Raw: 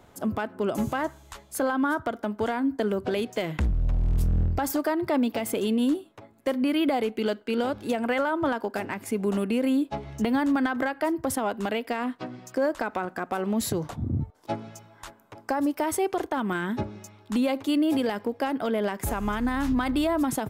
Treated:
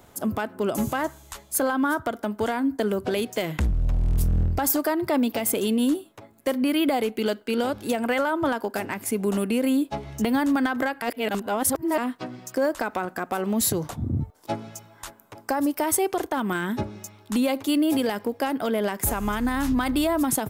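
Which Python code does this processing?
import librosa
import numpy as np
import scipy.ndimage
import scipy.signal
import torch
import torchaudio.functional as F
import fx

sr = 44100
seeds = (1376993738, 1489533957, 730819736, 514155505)

y = fx.edit(x, sr, fx.reverse_span(start_s=11.02, length_s=0.96), tone=tone)
y = fx.high_shelf(y, sr, hz=7000.0, db=11.5)
y = y * librosa.db_to_amplitude(1.5)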